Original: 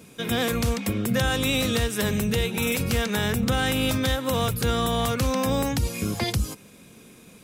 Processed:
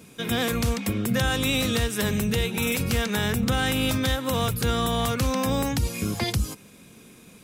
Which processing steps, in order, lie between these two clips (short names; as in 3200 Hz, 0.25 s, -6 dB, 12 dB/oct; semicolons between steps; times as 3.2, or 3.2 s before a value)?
bell 540 Hz -2 dB